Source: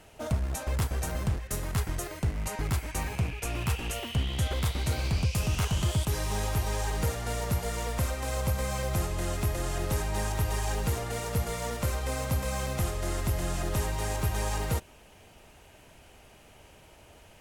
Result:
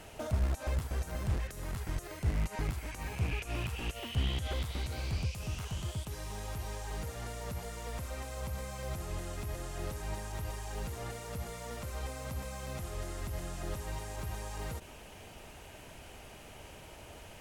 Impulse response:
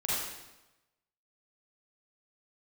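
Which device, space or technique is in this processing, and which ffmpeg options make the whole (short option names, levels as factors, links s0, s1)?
de-esser from a sidechain: -filter_complex "[0:a]asplit=2[s0][s1];[s1]highpass=f=5400:w=0.5412,highpass=f=5400:w=1.3066,apad=whole_len=767755[s2];[s0][s2]sidechaincompress=threshold=0.00112:ratio=4:attack=4.6:release=30,volume=1.58"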